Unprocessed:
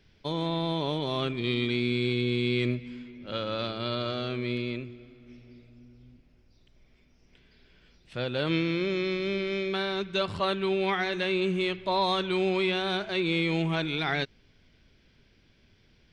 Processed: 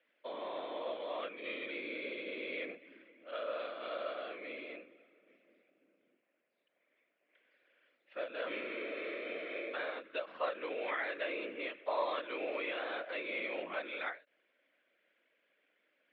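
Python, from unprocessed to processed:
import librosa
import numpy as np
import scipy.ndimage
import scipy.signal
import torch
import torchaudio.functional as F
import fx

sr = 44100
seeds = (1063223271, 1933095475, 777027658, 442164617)

y = fx.whisperise(x, sr, seeds[0])
y = fx.cabinet(y, sr, low_hz=390.0, low_slope=24, high_hz=2700.0, hz=(400.0, 570.0, 850.0, 1800.0), db=(-9, 6, -7, 3))
y = fx.end_taper(y, sr, db_per_s=220.0)
y = F.gain(torch.from_numpy(y), -7.0).numpy()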